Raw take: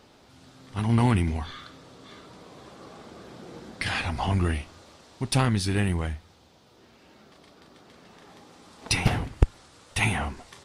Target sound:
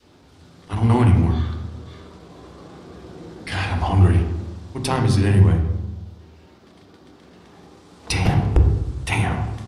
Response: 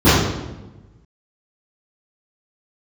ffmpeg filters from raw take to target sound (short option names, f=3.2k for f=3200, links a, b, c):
-filter_complex "[0:a]adynamicequalizer=threshold=0.00794:dfrequency=730:dqfactor=0.93:tfrequency=730:tqfactor=0.93:attack=5:release=100:ratio=0.375:range=2:mode=boostabove:tftype=bell,atempo=1.1,asplit=2[a][b];[1:a]atrim=start_sample=2205[c];[b][c]afir=irnorm=-1:irlink=0,volume=-31.5dB[d];[a][d]amix=inputs=2:normalize=0"